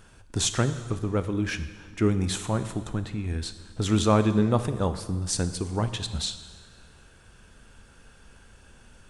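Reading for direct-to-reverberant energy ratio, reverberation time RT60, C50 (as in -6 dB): 10.0 dB, 1.6 s, 11.5 dB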